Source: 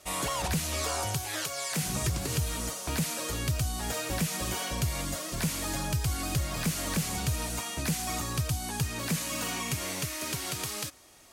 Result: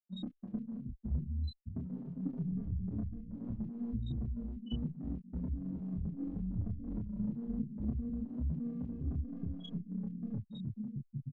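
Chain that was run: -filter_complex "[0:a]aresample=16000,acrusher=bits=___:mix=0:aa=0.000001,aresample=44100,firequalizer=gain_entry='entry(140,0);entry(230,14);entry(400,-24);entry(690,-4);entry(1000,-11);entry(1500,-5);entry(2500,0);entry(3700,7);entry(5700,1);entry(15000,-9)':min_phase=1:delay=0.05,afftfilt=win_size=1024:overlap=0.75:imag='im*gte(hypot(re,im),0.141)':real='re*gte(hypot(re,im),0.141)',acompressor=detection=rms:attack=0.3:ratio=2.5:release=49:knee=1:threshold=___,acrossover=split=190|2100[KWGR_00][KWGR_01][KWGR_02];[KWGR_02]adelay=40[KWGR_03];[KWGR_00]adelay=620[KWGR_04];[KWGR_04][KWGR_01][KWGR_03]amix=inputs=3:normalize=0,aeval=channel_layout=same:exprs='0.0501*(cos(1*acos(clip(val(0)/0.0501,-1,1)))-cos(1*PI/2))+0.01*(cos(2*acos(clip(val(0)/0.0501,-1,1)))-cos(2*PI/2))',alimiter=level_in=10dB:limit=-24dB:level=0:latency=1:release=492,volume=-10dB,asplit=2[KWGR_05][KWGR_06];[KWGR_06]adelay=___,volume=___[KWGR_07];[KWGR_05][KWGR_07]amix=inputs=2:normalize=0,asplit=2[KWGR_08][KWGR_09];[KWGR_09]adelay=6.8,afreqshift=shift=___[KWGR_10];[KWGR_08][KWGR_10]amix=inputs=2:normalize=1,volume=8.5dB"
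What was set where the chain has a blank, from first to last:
5, -36dB, 28, -4dB, 0.29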